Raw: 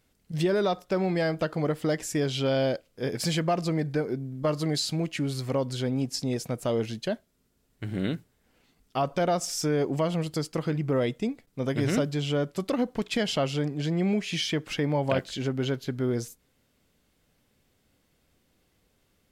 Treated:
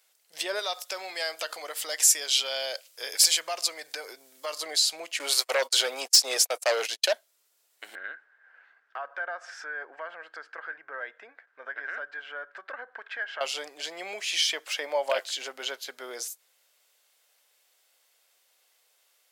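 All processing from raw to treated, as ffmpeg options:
ffmpeg -i in.wav -filter_complex "[0:a]asettb=1/sr,asplit=3[link_01][link_02][link_03];[link_01]atrim=end=0.594[link_04];[link_02]atrim=start=0.59:end=4.58,asetpts=PTS-STARTPTS,afade=type=in:duration=0.004:curve=qsin,afade=type=out:start_time=3.986:duration=0.004:curve=qsin,acompressor=threshold=-31dB:ratio=2.5:attack=3.2:release=140:knee=1:detection=peak,highshelf=frequency=2200:gain=11[link_05];[link_03]atrim=start=4.576[link_06];[link_04][link_05]acrossfade=duration=0.004:curve1=hsin:curve2=qsin[link_07];[link_07][link_06]acrossfade=duration=0.004:curve1=qsin:curve2=hsin,asettb=1/sr,asplit=3[link_08][link_09][link_10];[link_08]atrim=end=5.194[link_11];[link_09]atrim=start=5.19:end=7.13,asetpts=PTS-STARTPTS,afade=type=in:duration=0.004:curve=qsin,afade=type=out:start_time=1.936:duration=0.004:curve=qsin,highpass=400,aeval=exprs='0.141*sin(PI/2*2.24*val(0)/0.141)':channel_layout=same,agate=range=-38dB:threshold=-31dB:ratio=16:release=100:detection=peak[link_12];[link_10]atrim=start=7.126[link_13];[link_11][link_12]acrossfade=duration=0.004:curve1=hsin:curve2=qsin[link_14];[link_14][link_13]acrossfade=duration=0.004:curve1=qsin:curve2=hsin,asettb=1/sr,asplit=3[link_15][link_16][link_17];[link_15]atrim=end=7.954[link_18];[link_16]atrim=start=7.95:end=13.41,asetpts=PTS-STARTPTS,afade=type=in:duration=0.004:curve=qsin,afade=type=out:start_time=5.456:duration=0.004:curve=qsin,lowpass=frequency=1600:width_type=q:width=14,acompressor=threshold=-42dB:ratio=2:attack=3.2:release=140:knee=1:detection=peak[link_19];[link_17]atrim=start=13.406[link_20];[link_18][link_19]acrossfade=duration=0.004:curve1=hsin:curve2=qsin[link_21];[link_21][link_20]acrossfade=duration=0.004:curve1=qsin:curve2=hsin,asettb=1/sr,asplit=3[link_22][link_23][link_24];[link_22]atrim=end=14.674[link_25];[link_23]atrim=start=14.67:end=15.22,asetpts=PTS-STARTPTS,afade=type=in:duration=0.004:curve=qsin,afade=type=out:start_time=0.546:duration=0.004:curve=qsin,deesser=0.85,equalizer=frequency=580:width=6.8:gain=6[link_26];[link_24]atrim=start=15.216[link_27];[link_25][link_26]acrossfade=duration=0.004:curve1=hsin:curve2=qsin[link_28];[link_28][link_27]acrossfade=duration=0.004:curve1=qsin:curve2=hsin,highpass=frequency=580:width=0.5412,highpass=frequency=580:width=1.3066,highshelf=frequency=2900:gain=9" out.wav

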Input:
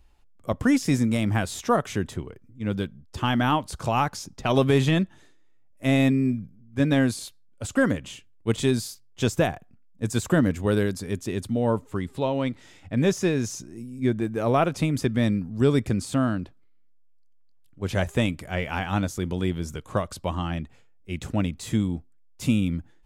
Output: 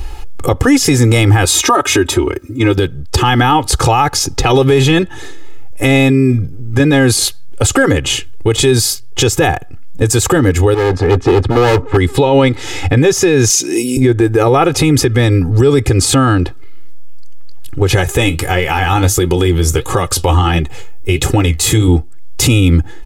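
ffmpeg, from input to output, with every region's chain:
ffmpeg -i in.wav -filter_complex "[0:a]asettb=1/sr,asplit=3[link_01][link_02][link_03];[link_01]atrim=end=1.454[link_04];[link_02]atrim=start=1.45:end=2.78,asetpts=PTS-STARTPTS,afade=type=in:duration=0.004:curve=qsin,afade=type=out:start_time=1.326:duration=0.004:curve=qsin,highpass=frequency=140:poles=1,aecho=1:1:3.2:0.91,atrim=end_sample=58653[link_05];[link_03]atrim=start=2.776[link_06];[link_04][link_05]acrossfade=duration=0.004:curve1=hsin:curve2=qsin[link_07];[link_07][link_06]acrossfade=duration=0.004:curve1=qsin:curve2=hsin,asettb=1/sr,asplit=3[link_08][link_09][link_10];[link_08]atrim=end=10.744[link_11];[link_09]atrim=start=10.74:end=11.97,asetpts=PTS-STARTPTS,afade=type=in:duration=0.004:curve=qsin,afade=type=out:start_time=1.226:duration=0.004:curve=qsin,lowpass=1900,volume=31.5dB,asoftclip=hard,volume=-31.5dB[link_12];[link_10]atrim=start=11.966[link_13];[link_11][link_12]acrossfade=duration=0.004:curve1=hsin:curve2=qsin[link_14];[link_14][link_13]acrossfade=duration=0.004:curve1=qsin:curve2=hsin,asettb=1/sr,asplit=3[link_15][link_16][link_17];[link_15]atrim=end=13.504[link_18];[link_16]atrim=start=13.5:end=13.97,asetpts=PTS-STARTPTS,afade=type=in:duration=0.004:curve=qsin,afade=type=out:start_time=0.466:duration=0.004:curve=qsin,highpass=frequency=200:width=0.5412,highpass=frequency=200:width=1.3066,highshelf=frequency=1900:width_type=q:width=1.5:gain=8,acompressor=threshold=-36dB:ratio=1.5:attack=3.2:release=140:knee=1:detection=peak[link_19];[link_17]atrim=start=13.966[link_20];[link_18][link_19]acrossfade=duration=0.004:curve1=hsin:curve2=qsin[link_21];[link_21][link_20]acrossfade=duration=0.004:curve1=qsin:curve2=hsin,asettb=1/sr,asplit=3[link_22][link_23][link_24];[link_22]atrim=end=17.964[link_25];[link_23]atrim=start=17.96:end=21.88,asetpts=PTS-STARTPTS,afade=type=in:duration=0.004:curve=qsin,afade=type=out:start_time=3.916:duration=0.004:curve=qsin,highshelf=frequency=8700:gain=8,flanger=delay=5.1:depth=8.2:regen=57:speed=1.5:shape=sinusoidal[link_26];[link_24]atrim=start=21.876[link_27];[link_25][link_26]acrossfade=duration=0.004:curve1=hsin:curve2=qsin[link_28];[link_28][link_27]acrossfade=duration=0.004:curve1=qsin:curve2=hsin,aecho=1:1:2.4:0.99,acompressor=threshold=-45dB:ratio=2,alimiter=level_in=31.5dB:limit=-1dB:release=50:level=0:latency=1,volume=-1dB" out.wav

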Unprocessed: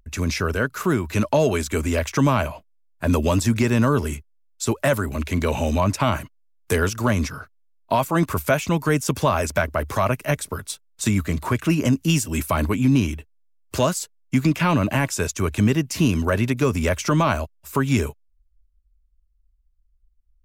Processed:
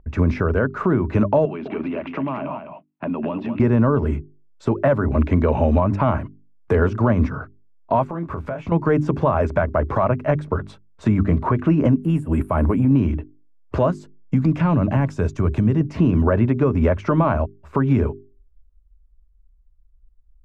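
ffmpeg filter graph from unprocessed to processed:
ffmpeg -i in.wav -filter_complex "[0:a]asettb=1/sr,asplit=3[link_01][link_02][link_03];[link_01]atrim=end=1.454[link_04];[link_02]atrim=start=1.45:end=3.6,asetpts=PTS-STARTPTS,afade=type=in:duration=0.004:curve=qsin,afade=type=out:start_time=2.146:duration=0.004:curve=qsin,highpass=frequency=170:width=0.5412,highpass=frequency=170:width=1.3066,equalizer=frequency=480:width_type=q:width=4:gain=-9,equalizer=frequency=1600:width_type=q:width=4:gain=-5,equalizer=frequency=2700:width_type=q:width=4:gain=9,lowpass=frequency=3900:width=0.5412,lowpass=frequency=3900:width=1.3066,acompressor=threshold=-29dB:ratio=10:attack=3.2:release=140:knee=1:detection=peak,aecho=1:1:206:0.422,atrim=end_sample=94815[link_05];[link_03]atrim=start=3.596[link_06];[link_04][link_05]acrossfade=duration=0.004:curve1=hsin:curve2=qsin[link_07];[link_07][link_06]acrossfade=duration=0.004:curve1=qsin:curve2=hsin,asettb=1/sr,asplit=3[link_08][link_09][link_10];[link_08]atrim=end=8.074[link_11];[link_09]atrim=start=8.07:end=8.72,asetpts=PTS-STARTPTS,afade=type=in:duration=0.004:curve=qsin,afade=type=out:start_time=0.646:duration=0.004:curve=qsin,asplit=2[link_12][link_13];[link_13]adelay=24,volume=-6.5dB[link_14];[link_12][link_14]amix=inputs=2:normalize=0,atrim=end_sample=28665,acompressor=threshold=-30dB:ratio=16:attack=3.2:release=140:knee=1:detection=peak[link_15];[link_10]atrim=start=8.716[link_16];[link_11][link_15]acrossfade=duration=0.004:curve1=hsin:curve2=qsin[link_17];[link_17][link_16]acrossfade=duration=0.004:curve1=qsin:curve2=hsin,asettb=1/sr,asplit=3[link_18][link_19][link_20];[link_18]atrim=end=11.984[link_21];[link_19]atrim=start=11.98:end=12.91,asetpts=PTS-STARTPTS,afade=type=in:duration=0.004:curve=qsin,afade=type=out:start_time=0.926:duration=0.004:curve=qsin,highshelf=frequency=7400:width_type=q:width=3:gain=13.5,bandreject=frequency=6200:width=6.7,acompressor=threshold=-20dB:ratio=12:attack=3.2:release=140:knee=1:detection=peak[link_22];[link_20]atrim=start=12.906[link_23];[link_21][link_22]acrossfade=duration=0.004:curve1=hsin:curve2=qsin[link_24];[link_24][link_23]acrossfade=duration=0.004:curve1=qsin:curve2=hsin,asettb=1/sr,asplit=3[link_25][link_26][link_27];[link_25]atrim=end=13.904[link_28];[link_26]atrim=start=13.9:end=15.81,asetpts=PTS-STARTPTS,afade=type=in:duration=0.004:curve=qsin,afade=type=out:start_time=1.906:duration=0.004:curve=qsin,bass=frequency=250:gain=6,treble=frequency=4000:gain=11,acompressor=threshold=-26dB:ratio=2.5:attack=3.2:release=140:knee=1:detection=peak[link_29];[link_27]atrim=start=15.806[link_30];[link_28][link_29]acrossfade=duration=0.004:curve1=hsin:curve2=qsin[link_31];[link_31][link_30]acrossfade=duration=0.004:curve1=qsin:curve2=hsin,lowpass=1100,bandreject=frequency=50:width_type=h:width=6,bandreject=frequency=100:width_type=h:width=6,bandreject=frequency=150:width_type=h:width=6,bandreject=frequency=200:width_type=h:width=6,bandreject=frequency=250:width_type=h:width=6,bandreject=frequency=300:width_type=h:width=6,bandreject=frequency=350:width_type=h:width=6,bandreject=frequency=400:width_type=h:width=6,alimiter=limit=-17dB:level=0:latency=1:release=229,volume=9dB" out.wav

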